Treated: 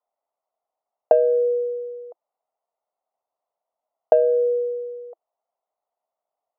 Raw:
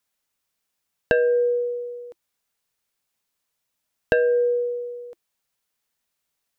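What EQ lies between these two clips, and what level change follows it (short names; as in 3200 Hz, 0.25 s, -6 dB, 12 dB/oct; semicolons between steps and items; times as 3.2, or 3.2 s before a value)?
polynomial smoothing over 65 samples; resonant high-pass 680 Hz, resonance Q 4.9; tilt -2.5 dB/oct; -2.0 dB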